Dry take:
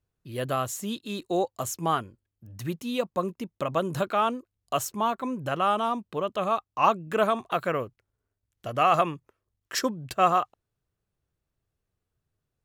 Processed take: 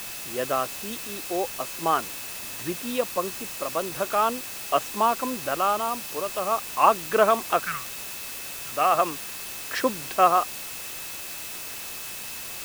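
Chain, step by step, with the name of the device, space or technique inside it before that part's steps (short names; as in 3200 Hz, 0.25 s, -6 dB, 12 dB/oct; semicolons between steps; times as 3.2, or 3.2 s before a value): 7.62–8.72 elliptic band-stop 170–1300 Hz; shortwave radio (BPF 290–2900 Hz; tremolo 0.41 Hz, depth 51%; whine 2600 Hz -50 dBFS; white noise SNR 9 dB); gain +5 dB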